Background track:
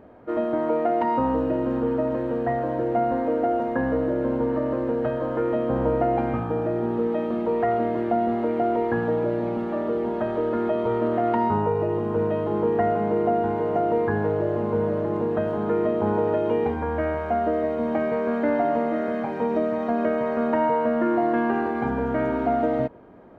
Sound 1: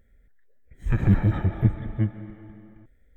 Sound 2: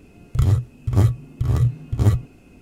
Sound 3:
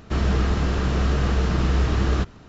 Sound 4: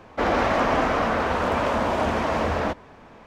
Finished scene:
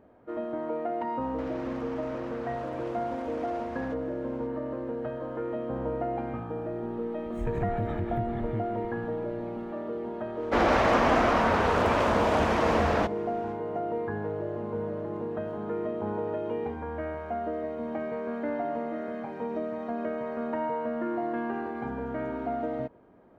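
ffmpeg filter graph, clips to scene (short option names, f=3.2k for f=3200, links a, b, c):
-filter_complex "[4:a]asplit=2[a][b];[0:a]volume=-9dB[c];[a]acompressor=threshold=-32dB:ratio=6:attack=3.2:release=140:knee=1:detection=peak[d];[1:a]acompressor=threshold=-27dB:ratio=6:attack=3.2:release=140:knee=1:detection=peak[e];[d]atrim=end=3.26,asetpts=PTS-STARTPTS,volume=-8.5dB,afade=t=in:d=0.004:c=hsin,afade=t=out:st=3.256:d=0.004:c=hsin,adelay=1210[f];[e]atrim=end=3.16,asetpts=PTS-STARTPTS,volume=-1.5dB,afade=t=in:d=0.004:c=hsin,afade=t=out:st=3.156:d=0.004:c=hsin,adelay=6550[g];[b]atrim=end=3.26,asetpts=PTS-STARTPTS,volume=-1.5dB,afade=t=in:d=0.1,afade=t=out:st=3.16:d=0.1,adelay=455994S[h];[c][f][g][h]amix=inputs=4:normalize=0"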